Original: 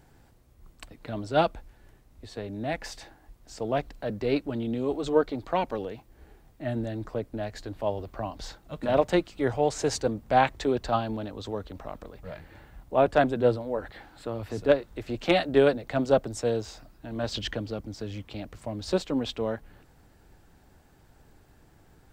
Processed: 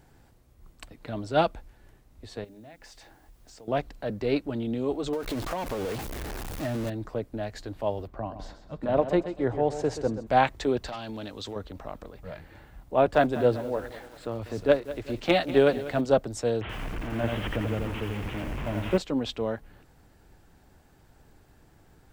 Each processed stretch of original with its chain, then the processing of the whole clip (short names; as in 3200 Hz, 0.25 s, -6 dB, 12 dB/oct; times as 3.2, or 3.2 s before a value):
2.44–3.68 notches 50/100/150/200/250/300/350 Hz + compressor 4:1, threshold -48 dBFS + requantised 12-bit, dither triangular
5.13–6.9 zero-crossing step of -30 dBFS + compressor 16:1, threshold -26 dBFS
8.07–10.27 high shelf 2100 Hz -12 dB + feedback echo 0.129 s, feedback 35%, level -11 dB
10.86–11.56 overdrive pedal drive 15 dB, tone 6000 Hz, clips at -11.5 dBFS + bell 850 Hz -9.5 dB 2.9 oct + compressor, threshold -32 dBFS
12.94–16.01 median filter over 3 samples + lo-fi delay 0.194 s, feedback 55%, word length 7-bit, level -15 dB
16.61–18.98 delta modulation 16 kbps, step -31 dBFS + low shelf 190 Hz +5 dB + lo-fi delay 85 ms, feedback 35%, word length 8-bit, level -3.5 dB
whole clip: dry